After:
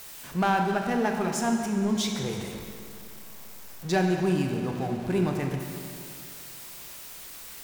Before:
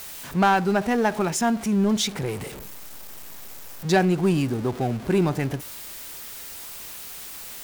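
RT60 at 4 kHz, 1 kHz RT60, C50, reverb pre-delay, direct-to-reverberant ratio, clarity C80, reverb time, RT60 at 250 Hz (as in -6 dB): 2.1 s, 2.4 s, 4.0 dB, 22 ms, 2.5 dB, 5.0 dB, 2.4 s, 2.4 s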